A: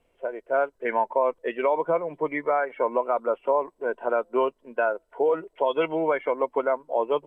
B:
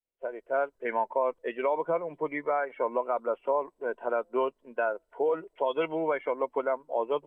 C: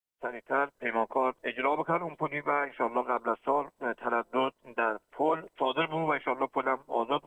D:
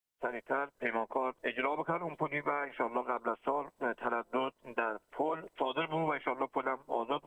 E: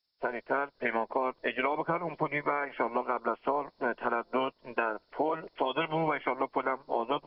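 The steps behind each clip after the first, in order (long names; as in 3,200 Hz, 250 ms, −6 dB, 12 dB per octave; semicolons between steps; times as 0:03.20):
downward expander −52 dBFS; level −4.5 dB
ceiling on every frequency bin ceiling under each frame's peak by 18 dB
downward compressor, threshold −31 dBFS, peak gain reduction 9.5 dB; level +1.5 dB
hearing-aid frequency compression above 3,400 Hz 4 to 1; level +3.5 dB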